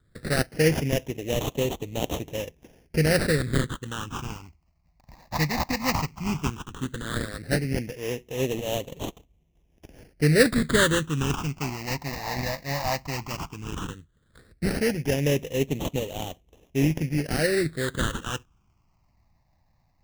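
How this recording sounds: aliases and images of a low sample rate 2.3 kHz, jitter 20%; phasing stages 8, 0.14 Hz, lowest notch 420–1500 Hz

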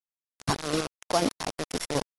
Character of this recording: a buzz of ramps at a fixed pitch in blocks of 8 samples; chopped level 4.1 Hz, depth 60%, duty 30%; a quantiser's noise floor 6-bit, dither none; AAC

